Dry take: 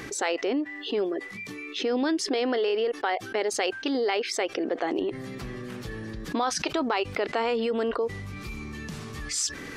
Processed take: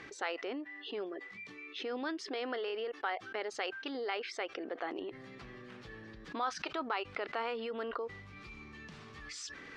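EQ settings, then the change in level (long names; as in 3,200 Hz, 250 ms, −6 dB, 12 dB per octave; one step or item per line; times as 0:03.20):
low-pass filter 3,900 Hz 12 dB per octave
low-shelf EQ 470 Hz −8.5 dB
dynamic equaliser 1,300 Hz, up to +5 dB, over −46 dBFS, Q 2.7
−8.0 dB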